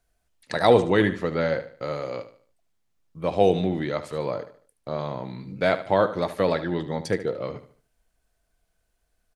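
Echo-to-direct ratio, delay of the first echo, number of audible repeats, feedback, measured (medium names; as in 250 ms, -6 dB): -12.5 dB, 74 ms, 3, 36%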